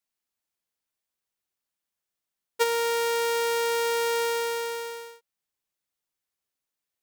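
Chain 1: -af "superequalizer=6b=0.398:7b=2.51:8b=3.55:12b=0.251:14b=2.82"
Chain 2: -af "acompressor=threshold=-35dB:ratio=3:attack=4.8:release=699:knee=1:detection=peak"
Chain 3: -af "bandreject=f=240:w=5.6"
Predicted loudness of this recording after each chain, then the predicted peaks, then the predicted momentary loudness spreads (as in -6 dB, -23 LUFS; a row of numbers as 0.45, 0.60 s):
-20.5, -35.5, -26.0 LUFS; -8.0, -26.0, -12.5 dBFS; 8, 9, 8 LU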